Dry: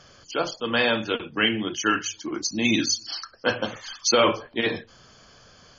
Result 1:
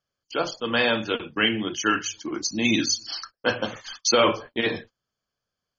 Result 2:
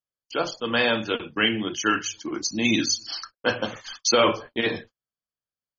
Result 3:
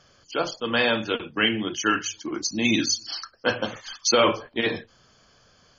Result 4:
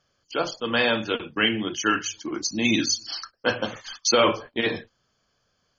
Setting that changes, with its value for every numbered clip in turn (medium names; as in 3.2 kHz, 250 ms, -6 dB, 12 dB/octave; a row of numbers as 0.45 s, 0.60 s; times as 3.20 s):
gate, range: -33 dB, -48 dB, -6 dB, -19 dB